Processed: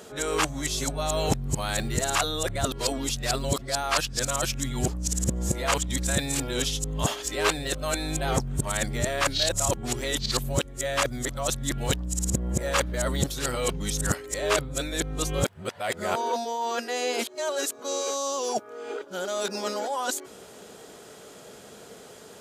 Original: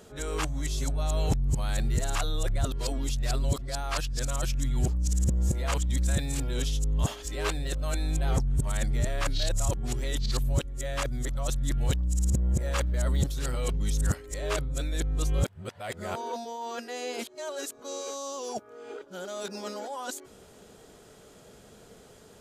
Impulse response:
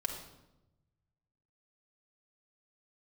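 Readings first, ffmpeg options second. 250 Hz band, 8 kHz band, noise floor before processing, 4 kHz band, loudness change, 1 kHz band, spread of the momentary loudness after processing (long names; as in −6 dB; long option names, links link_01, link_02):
+4.0 dB, +8.0 dB, −53 dBFS, +8.0 dB, +3.0 dB, +7.5 dB, 9 LU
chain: -af "highpass=frequency=280:poles=1,volume=8dB"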